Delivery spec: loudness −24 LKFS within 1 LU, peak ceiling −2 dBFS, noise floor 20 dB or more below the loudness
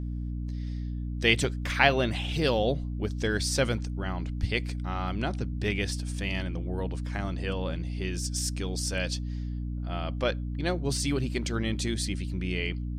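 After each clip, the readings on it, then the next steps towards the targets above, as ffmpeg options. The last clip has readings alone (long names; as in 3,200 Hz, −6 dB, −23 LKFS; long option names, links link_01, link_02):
mains hum 60 Hz; hum harmonics up to 300 Hz; level of the hum −30 dBFS; integrated loudness −30.0 LKFS; sample peak −5.0 dBFS; target loudness −24.0 LKFS
→ -af "bandreject=frequency=60:width_type=h:width=6,bandreject=frequency=120:width_type=h:width=6,bandreject=frequency=180:width_type=h:width=6,bandreject=frequency=240:width_type=h:width=6,bandreject=frequency=300:width_type=h:width=6"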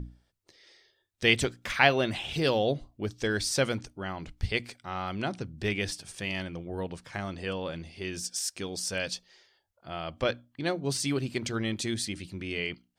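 mains hum none found; integrated loudness −31.0 LKFS; sample peak −5.5 dBFS; target loudness −24.0 LKFS
→ -af "volume=7dB,alimiter=limit=-2dB:level=0:latency=1"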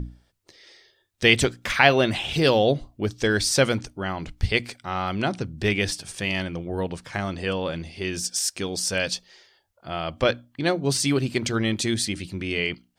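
integrated loudness −24.0 LKFS; sample peak −2.0 dBFS; background noise floor −67 dBFS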